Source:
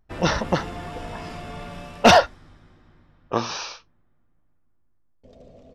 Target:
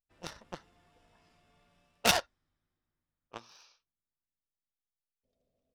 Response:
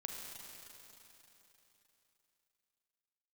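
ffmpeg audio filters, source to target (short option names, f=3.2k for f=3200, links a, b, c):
-af "highshelf=f=2.1k:g=8,aeval=exprs='1.12*(cos(1*acos(clip(val(0)/1.12,-1,1)))-cos(1*PI/2))+0.355*(cos(3*acos(clip(val(0)/1.12,-1,1)))-cos(3*PI/2))':c=same,volume=-7.5dB"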